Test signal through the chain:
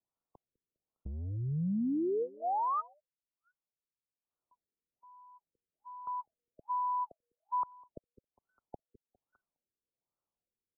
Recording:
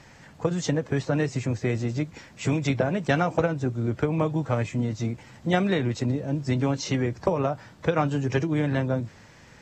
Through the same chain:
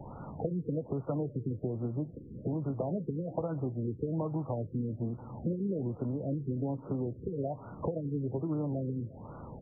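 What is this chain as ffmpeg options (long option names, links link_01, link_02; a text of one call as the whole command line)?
ffmpeg -i in.wav -filter_complex "[0:a]asplit=2[link_01][link_02];[link_02]alimiter=limit=-18.5dB:level=0:latency=1:release=170,volume=3dB[link_03];[link_01][link_03]amix=inputs=2:normalize=0,acompressor=threshold=-31dB:ratio=5,acrossover=split=140[link_04][link_05];[link_04]asoftclip=type=tanh:threshold=-39.5dB[link_06];[link_06][link_05]amix=inputs=2:normalize=0,aecho=1:1:203|406|609:0.0794|0.0334|0.014,afftfilt=real='re*lt(b*sr/1024,490*pow(1500/490,0.5+0.5*sin(2*PI*1.2*pts/sr)))':imag='im*lt(b*sr/1024,490*pow(1500/490,0.5+0.5*sin(2*PI*1.2*pts/sr)))':win_size=1024:overlap=0.75" out.wav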